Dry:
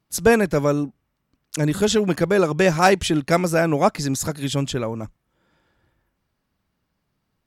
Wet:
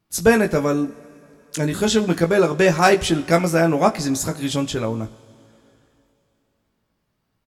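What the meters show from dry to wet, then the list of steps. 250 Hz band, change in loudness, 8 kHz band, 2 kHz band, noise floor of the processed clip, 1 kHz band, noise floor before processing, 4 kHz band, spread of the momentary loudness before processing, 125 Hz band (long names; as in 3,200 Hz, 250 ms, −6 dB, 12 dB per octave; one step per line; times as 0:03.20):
+1.5 dB, +1.0 dB, +1.0 dB, +1.5 dB, −72 dBFS, +0.5 dB, −75 dBFS, +1.0 dB, 11 LU, 0.0 dB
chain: double-tracking delay 18 ms −6 dB
coupled-rooms reverb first 0.54 s, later 3.3 s, from −14 dB, DRR 13.5 dB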